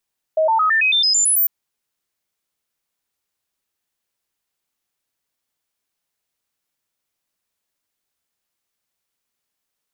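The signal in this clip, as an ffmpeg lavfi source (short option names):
-f lavfi -i "aevalsrc='0.224*clip(min(mod(t,0.11),0.11-mod(t,0.11))/0.005,0,1)*sin(2*PI*632*pow(2,floor(t/0.11)/2)*mod(t,0.11))':d=1.1:s=44100"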